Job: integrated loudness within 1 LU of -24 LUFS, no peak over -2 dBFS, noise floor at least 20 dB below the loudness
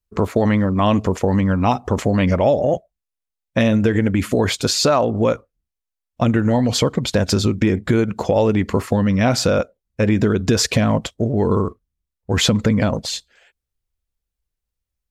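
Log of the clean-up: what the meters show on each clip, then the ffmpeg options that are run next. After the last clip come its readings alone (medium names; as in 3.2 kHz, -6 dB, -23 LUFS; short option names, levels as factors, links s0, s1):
loudness -18.5 LUFS; peak level -4.0 dBFS; loudness target -24.0 LUFS
-> -af "volume=0.531"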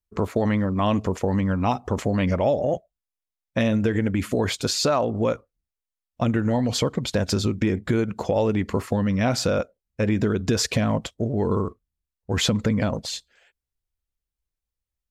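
loudness -24.0 LUFS; peak level -9.5 dBFS; noise floor -88 dBFS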